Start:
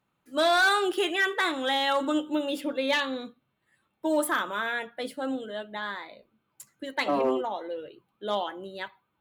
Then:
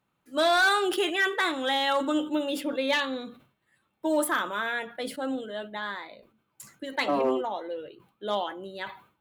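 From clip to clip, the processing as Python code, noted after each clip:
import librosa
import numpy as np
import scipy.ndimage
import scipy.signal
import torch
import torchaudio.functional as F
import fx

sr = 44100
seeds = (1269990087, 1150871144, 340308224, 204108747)

y = fx.sustainer(x, sr, db_per_s=130.0)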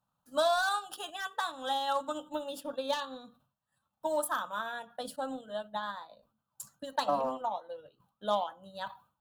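y = fx.fixed_phaser(x, sr, hz=890.0, stages=4)
y = fx.rider(y, sr, range_db=4, speed_s=2.0)
y = fx.transient(y, sr, attack_db=5, sustain_db=-6)
y = y * 10.0 ** (-4.5 / 20.0)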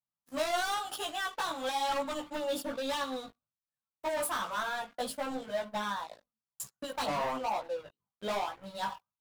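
y = fx.leveller(x, sr, passes=5)
y = fx.chorus_voices(y, sr, voices=2, hz=0.99, base_ms=17, depth_ms=3.0, mix_pct=45)
y = y * 10.0 ** (-8.5 / 20.0)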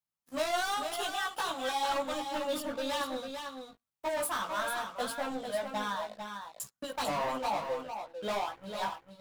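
y = x + 10.0 ** (-7.0 / 20.0) * np.pad(x, (int(448 * sr / 1000.0), 0))[:len(x)]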